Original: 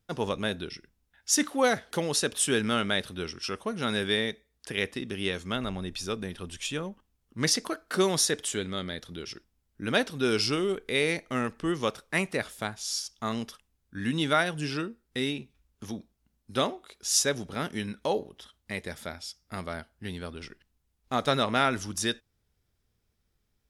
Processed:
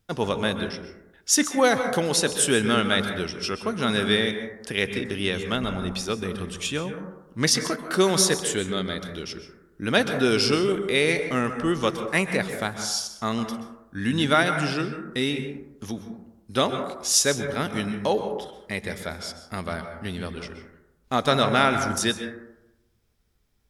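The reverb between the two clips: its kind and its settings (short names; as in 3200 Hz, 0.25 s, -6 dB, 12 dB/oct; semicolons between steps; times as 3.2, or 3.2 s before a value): plate-style reverb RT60 0.92 s, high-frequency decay 0.25×, pre-delay 0.115 s, DRR 7 dB; gain +4.5 dB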